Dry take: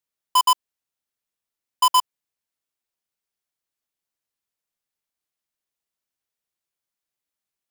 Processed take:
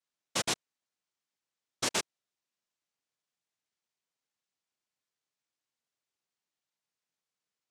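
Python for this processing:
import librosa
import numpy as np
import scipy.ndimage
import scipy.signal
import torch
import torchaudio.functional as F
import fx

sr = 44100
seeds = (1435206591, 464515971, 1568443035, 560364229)

y = 10.0 ** (-28.5 / 20.0) * np.tanh(x / 10.0 ** (-28.5 / 20.0))
y = fx.noise_vocoder(y, sr, seeds[0], bands=2)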